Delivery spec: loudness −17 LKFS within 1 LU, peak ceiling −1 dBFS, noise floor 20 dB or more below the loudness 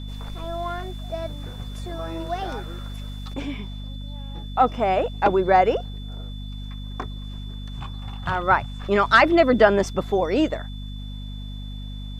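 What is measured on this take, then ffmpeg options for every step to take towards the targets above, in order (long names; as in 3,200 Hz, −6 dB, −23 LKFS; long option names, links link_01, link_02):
mains hum 50 Hz; hum harmonics up to 250 Hz; level of the hum −31 dBFS; interfering tone 3,500 Hz; level of the tone −44 dBFS; integrated loudness −22.0 LKFS; sample peak −2.0 dBFS; target loudness −17.0 LKFS
→ -af "bandreject=frequency=50:width_type=h:width=6,bandreject=frequency=100:width_type=h:width=6,bandreject=frequency=150:width_type=h:width=6,bandreject=frequency=200:width_type=h:width=6,bandreject=frequency=250:width_type=h:width=6"
-af "bandreject=frequency=3500:width=30"
-af "volume=5dB,alimiter=limit=-1dB:level=0:latency=1"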